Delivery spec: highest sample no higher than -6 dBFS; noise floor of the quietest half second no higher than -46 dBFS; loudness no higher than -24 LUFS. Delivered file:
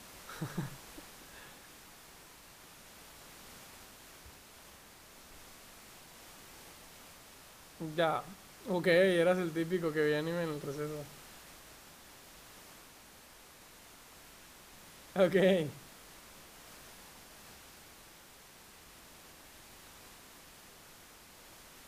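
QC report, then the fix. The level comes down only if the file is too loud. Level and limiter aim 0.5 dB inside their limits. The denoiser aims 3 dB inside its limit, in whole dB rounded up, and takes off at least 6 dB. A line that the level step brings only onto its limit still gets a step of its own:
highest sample -15.5 dBFS: pass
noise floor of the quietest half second -56 dBFS: pass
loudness -32.5 LUFS: pass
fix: none needed

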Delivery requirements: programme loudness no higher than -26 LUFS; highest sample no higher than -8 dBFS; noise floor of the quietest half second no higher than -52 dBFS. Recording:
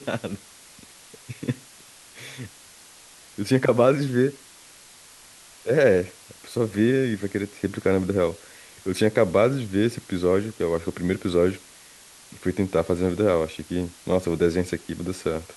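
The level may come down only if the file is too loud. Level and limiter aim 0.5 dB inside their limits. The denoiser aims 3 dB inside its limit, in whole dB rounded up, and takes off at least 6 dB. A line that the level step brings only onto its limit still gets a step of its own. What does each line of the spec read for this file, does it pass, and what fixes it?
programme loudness -24.0 LUFS: fail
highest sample -5.5 dBFS: fail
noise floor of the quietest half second -49 dBFS: fail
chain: noise reduction 6 dB, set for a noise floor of -49 dBFS; trim -2.5 dB; peak limiter -8.5 dBFS

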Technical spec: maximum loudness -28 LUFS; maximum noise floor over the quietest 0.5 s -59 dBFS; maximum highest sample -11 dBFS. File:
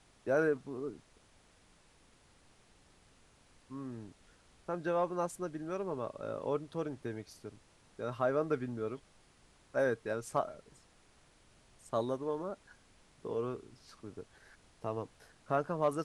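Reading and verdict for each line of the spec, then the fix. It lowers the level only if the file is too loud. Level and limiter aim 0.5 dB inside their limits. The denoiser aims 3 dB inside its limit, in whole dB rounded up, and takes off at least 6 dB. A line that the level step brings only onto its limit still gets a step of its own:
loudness -37.0 LUFS: pass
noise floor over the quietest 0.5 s -65 dBFS: pass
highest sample -18.0 dBFS: pass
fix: none needed

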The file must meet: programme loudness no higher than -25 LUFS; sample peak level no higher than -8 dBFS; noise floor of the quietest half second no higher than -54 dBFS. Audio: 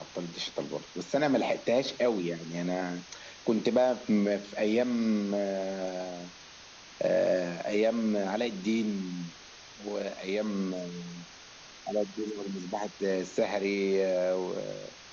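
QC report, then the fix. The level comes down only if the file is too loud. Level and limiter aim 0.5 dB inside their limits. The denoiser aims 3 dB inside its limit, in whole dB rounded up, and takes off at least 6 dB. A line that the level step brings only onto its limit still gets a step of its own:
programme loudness -30.5 LUFS: pass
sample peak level -13.5 dBFS: pass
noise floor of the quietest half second -50 dBFS: fail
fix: noise reduction 7 dB, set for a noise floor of -50 dBFS

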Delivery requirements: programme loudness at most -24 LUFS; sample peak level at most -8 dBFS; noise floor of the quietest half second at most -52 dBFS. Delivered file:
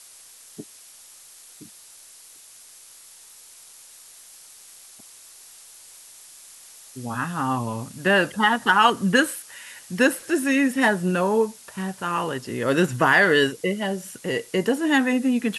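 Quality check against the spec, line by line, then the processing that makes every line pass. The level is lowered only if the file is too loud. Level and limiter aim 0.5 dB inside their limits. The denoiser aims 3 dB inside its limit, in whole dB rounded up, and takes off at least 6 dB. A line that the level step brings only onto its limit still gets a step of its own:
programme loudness -21.5 LUFS: fail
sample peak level -5.5 dBFS: fail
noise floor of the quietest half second -48 dBFS: fail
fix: noise reduction 6 dB, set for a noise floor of -48 dBFS; trim -3 dB

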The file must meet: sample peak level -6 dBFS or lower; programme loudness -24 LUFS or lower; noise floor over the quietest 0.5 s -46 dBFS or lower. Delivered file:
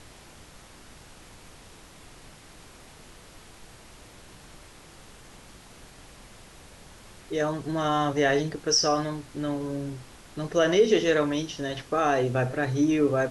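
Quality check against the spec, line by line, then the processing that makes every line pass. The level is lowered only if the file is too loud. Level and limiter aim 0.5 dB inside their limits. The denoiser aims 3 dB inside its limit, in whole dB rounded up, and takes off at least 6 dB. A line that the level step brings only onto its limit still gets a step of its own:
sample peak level -10.0 dBFS: pass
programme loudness -25.5 LUFS: pass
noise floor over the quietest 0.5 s -49 dBFS: pass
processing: none needed

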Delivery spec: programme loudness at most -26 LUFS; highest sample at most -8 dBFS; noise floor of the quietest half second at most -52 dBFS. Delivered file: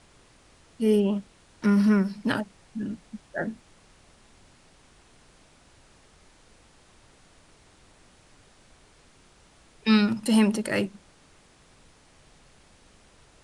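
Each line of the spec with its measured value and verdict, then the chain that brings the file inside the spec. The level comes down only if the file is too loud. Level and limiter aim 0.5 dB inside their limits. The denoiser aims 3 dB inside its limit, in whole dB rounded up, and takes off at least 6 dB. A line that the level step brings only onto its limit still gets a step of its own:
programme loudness -25.5 LUFS: fail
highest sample -10.0 dBFS: pass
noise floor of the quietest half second -57 dBFS: pass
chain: trim -1 dB

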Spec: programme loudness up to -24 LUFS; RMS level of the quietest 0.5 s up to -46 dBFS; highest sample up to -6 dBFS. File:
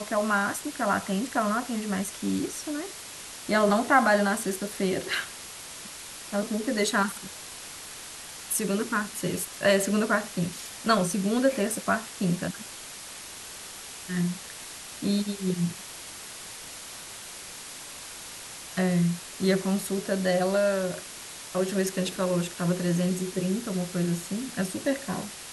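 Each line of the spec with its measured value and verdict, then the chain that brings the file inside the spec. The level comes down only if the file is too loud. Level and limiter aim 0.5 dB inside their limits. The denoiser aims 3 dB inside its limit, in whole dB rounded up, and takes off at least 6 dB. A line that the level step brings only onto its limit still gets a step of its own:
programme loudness -27.5 LUFS: pass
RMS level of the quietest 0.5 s -42 dBFS: fail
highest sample -10.0 dBFS: pass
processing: noise reduction 7 dB, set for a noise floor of -42 dBFS

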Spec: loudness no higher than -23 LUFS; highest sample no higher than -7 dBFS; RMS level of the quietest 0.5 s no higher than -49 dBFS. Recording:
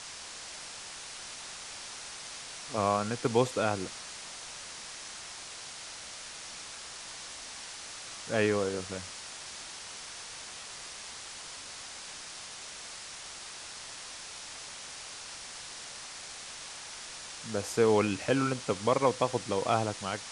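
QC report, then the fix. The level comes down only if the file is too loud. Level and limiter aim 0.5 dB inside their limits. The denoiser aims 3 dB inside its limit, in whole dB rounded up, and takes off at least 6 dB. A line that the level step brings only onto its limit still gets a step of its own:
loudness -34.5 LUFS: pass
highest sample -11.5 dBFS: pass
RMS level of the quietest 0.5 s -44 dBFS: fail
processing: noise reduction 8 dB, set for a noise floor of -44 dBFS

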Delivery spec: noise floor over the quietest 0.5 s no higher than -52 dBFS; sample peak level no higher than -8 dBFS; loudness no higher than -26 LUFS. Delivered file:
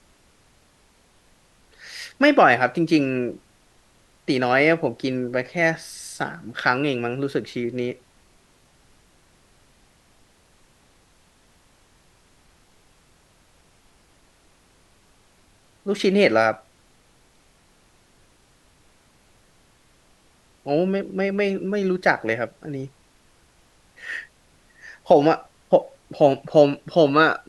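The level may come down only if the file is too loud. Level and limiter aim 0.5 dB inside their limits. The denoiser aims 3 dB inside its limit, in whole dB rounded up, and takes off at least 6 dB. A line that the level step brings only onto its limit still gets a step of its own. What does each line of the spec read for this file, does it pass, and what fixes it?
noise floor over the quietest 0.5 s -58 dBFS: pass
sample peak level -3.0 dBFS: fail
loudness -21.0 LUFS: fail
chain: trim -5.5 dB

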